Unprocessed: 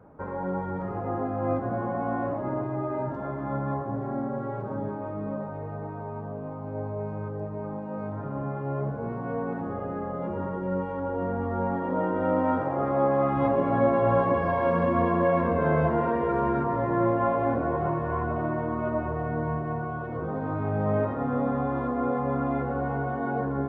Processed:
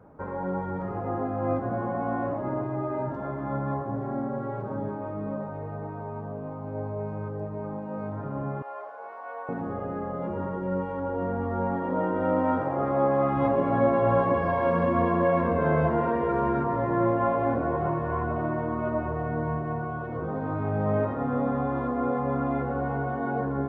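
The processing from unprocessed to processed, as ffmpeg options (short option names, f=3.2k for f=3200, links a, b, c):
-filter_complex "[0:a]asettb=1/sr,asplit=3[a][b][c];[a]atrim=end=8.624[d];[b]atrim=start=8.62:end=9.49,asetpts=PTS-STARTPTS,afade=t=in:d=0.004:c=qsin,afade=t=out:st=0.866:d=0.004:c=qsin,highpass=f=650:w=0.5412,highpass=f=650:w=1.3066[e];[c]atrim=start=9.486[f];[d][e]acrossfade=d=0.004:c1=hsin:c2=qsin[g];[g][f]acrossfade=d=0.004:c1=qsin:c2=hsin"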